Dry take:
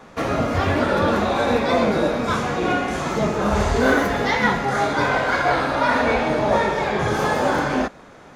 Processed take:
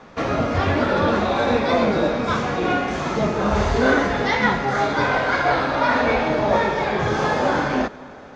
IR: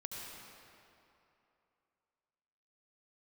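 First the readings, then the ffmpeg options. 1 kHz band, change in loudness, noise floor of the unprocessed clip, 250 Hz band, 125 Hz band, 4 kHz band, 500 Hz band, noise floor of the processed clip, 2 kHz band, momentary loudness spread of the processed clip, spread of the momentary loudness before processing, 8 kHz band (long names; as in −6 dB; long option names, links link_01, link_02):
0.0 dB, 0.0 dB, −45 dBFS, 0.0 dB, 0.0 dB, 0.0 dB, 0.0 dB, −40 dBFS, 0.0 dB, 4 LU, 4 LU, −4.0 dB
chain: -filter_complex "[0:a]lowpass=frequency=6300:width=0.5412,lowpass=frequency=6300:width=1.3066,asplit=2[link_01][link_02];[1:a]atrim=start_sample=2205,asetrate=26460,aresample=44100,adelay=32[link_03];[link_02][link_03]afir=irnorm=-1:irlink=0,volume=-21.5dB[link_04];[link_01][link_04]amix=inputs=2:normalize=0"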